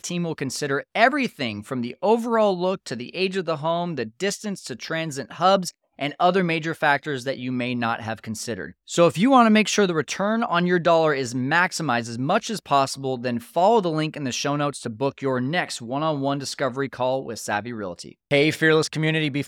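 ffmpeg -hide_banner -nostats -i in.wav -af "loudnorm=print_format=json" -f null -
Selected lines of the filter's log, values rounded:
"input_i" : "-22.8",
"input_tp" : "-2.5",
"input_lra" : "5.0",
"input_thresh" : "-32.9",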